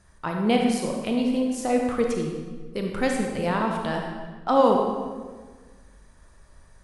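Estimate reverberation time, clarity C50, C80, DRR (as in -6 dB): 1.5 s, 2.5 dB, 4.5 dB, 1.0 dB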